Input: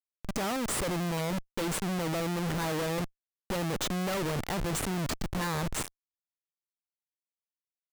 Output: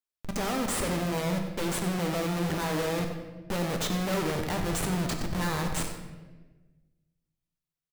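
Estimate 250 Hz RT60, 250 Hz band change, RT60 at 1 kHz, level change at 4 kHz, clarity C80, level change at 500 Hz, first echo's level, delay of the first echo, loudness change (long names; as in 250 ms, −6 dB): 1.7 s, +2.5 dB, 1.1 s, +1.5 dB, 6.5 dB, +2.5 dB, −12.5 dB, 96 ms, +2.0 dB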